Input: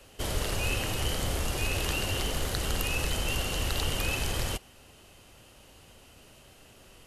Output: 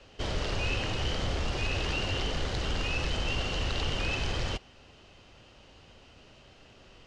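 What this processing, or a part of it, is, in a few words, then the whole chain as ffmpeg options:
synthesiser wavefolder: -af "aeval=exprs='0.075*(abs(mod(val(0)/0.075+3,4)-2)-1)':channel_layout=same,lowpass=frequency=5600:width=0.5412,lowpass=frequency=5600:width=1.3066"

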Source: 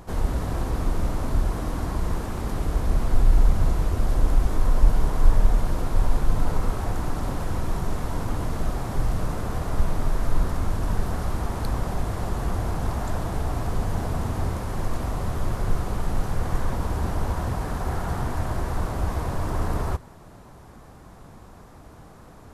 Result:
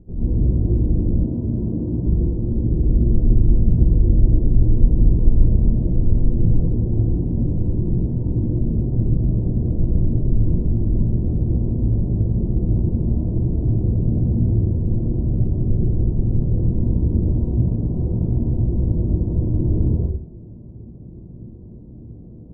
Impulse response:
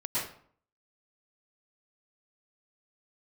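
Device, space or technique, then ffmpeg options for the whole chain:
next room: -filter_complex "[0:a]lowpass=frequency=370:width=0.5412,lowpass=frequency=370:width=1.3066[link_01];[1:a]atrim=start_sample=2205[link_02];[link_01][link_02]afir=irnorm=-1:irlink=0,asettb=1/sr,asplit=3[link_03][link_04][link_05];[link_03]atrim=end=1.244[link_06];[link_04]atrim=start=1.24:end=2.05,asetpts=PTS-STARTPTS,afade=type=in:duration=0.004:curve=qsin,afade=type=out:start_time=0.806:duration=0.004:curve=qsin,highpass=92[link_07];[link_05]atrim=start=2.046[link_08];[link_06][link_07]acrossfade=duration=0.004:curve1=hsin:curve2=qsin[link_09];[link_09][link_08]acrossfade=duration=0.004:curve1=qsin:curve2=hsin,volume=2.5dB"

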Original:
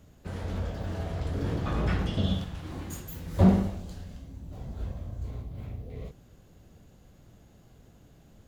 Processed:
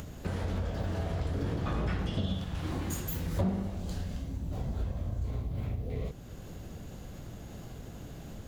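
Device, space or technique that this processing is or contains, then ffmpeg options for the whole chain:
upward and downward compression: -af "acompressor=mode=upward:threshold=-44dB:ratio=2.5,acompressor=threshold=-38dB:ratio=4,volume=7.5dB"

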